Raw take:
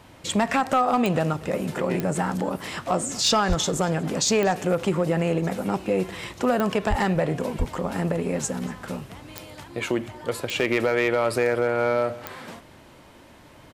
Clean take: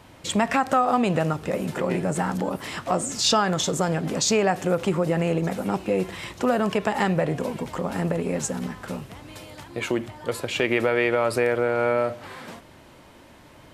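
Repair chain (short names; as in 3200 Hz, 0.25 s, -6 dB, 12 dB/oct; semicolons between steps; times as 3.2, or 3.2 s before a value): clip repair -13 dBFS; de-click; 3.48–3.6 HPF 140 Hz 24 dB/oct; 6.89–7.01 HPF 140 Hz 24 dB/oct; 7.58–7.7 HPF 140 Hz 24 dB/oct; inverse comb 0.236 s -23 dB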